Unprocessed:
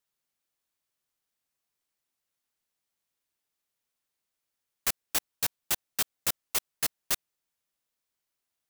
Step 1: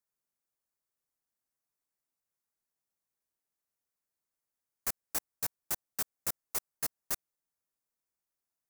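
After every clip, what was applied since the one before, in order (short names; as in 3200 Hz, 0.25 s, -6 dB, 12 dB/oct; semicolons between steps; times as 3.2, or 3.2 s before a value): bell 3200 Hz -11.5 dB 0.99 oct; gain -4.5 dB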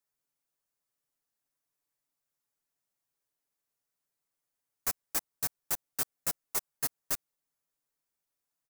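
comb 7 ms, depth 59%; gain +1 dB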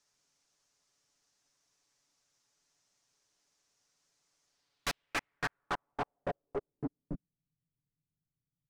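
low-pass sweep 6000 Hz -> 150 Hz, 4.46–7.44; soft clip -39 dBFS, distortion -8 dB; gain +10.5 dB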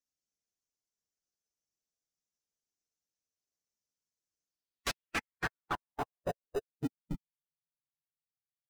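per-bin expansion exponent 1.5; in parallel at -9.5 dB: sample-and-hold 40×; on the sum: gain +1.5 dB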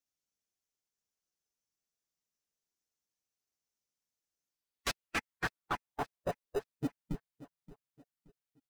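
feedback echo 0.575 s, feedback 36%, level -18 dB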